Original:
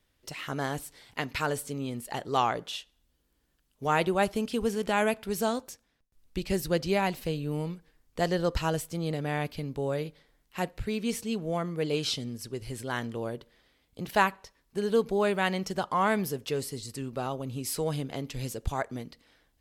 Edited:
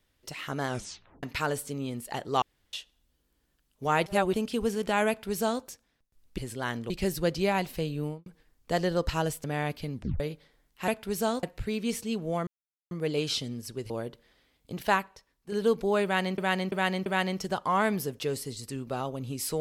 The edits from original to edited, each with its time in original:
0.67 s: tape stop 0.56 s
2.42–2.73 s: room tone
4.06–4.34 s: reverse
5.08–5.63 s: copy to 10.63 s
7.49–7.74 s: studio fade out
8.92–9.19 s: delete
9.69 s: tape stop 0.26 s
11.67 s: insert silence 0.44 s
12.66–13.18 s: move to 6.38 s
14.00–14.80 s: fade out, to -7.5 dB
15.32–15.66 s: loop, 4 plays

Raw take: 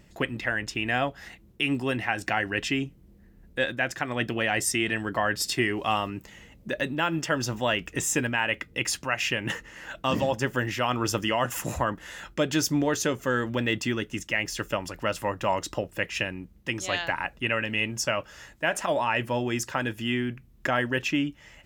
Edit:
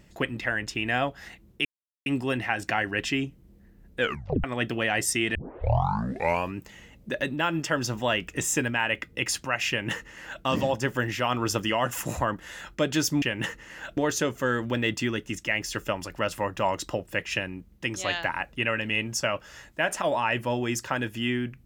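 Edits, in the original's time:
1.65 s: insert silence 0.41 s
3.59 s: tape stop 0.44 s
4.94 s: tape start 1.21 s
9.28–10.03 s: copy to 12.81 s

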